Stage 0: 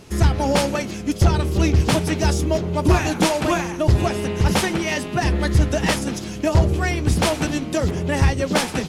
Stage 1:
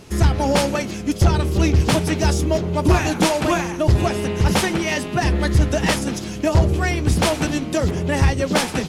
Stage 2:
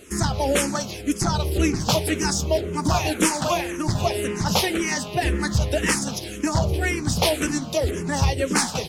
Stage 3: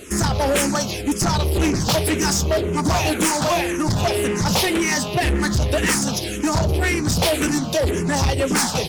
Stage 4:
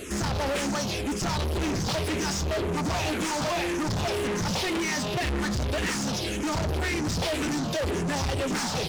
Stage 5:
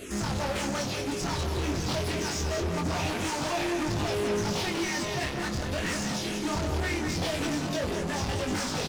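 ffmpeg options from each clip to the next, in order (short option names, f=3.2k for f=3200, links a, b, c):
-af "acontrast=21,volume=-3.5dB"
-filter_complex "[0:a]bass=f=250:g=-3,treble=f=4k:g=6,asplit=2[a][b];[b]afreqshift=-1.9[c];[a][c]amix=inputs=2:normalize=1"
-af "asoftclip=type=tanh:threshold=-22.5dB,volume=7.5dB"
-filter_complex "[0:a]asoftclip=type=tanh:threshold=-27.5dB,acrossover=split=7300[a][b];[b]acompressor=threshold=-48dB:ratio=4:attack=1:release=60[c];[a][c]amix=inputs=2:normalize=0,volume=1.5dB"
-af "flanger=delay=19.5:depth=4.3:speed=0.24,aecho=1:1:194|388|582|776:0.447|0.161|0.0579|0.0208"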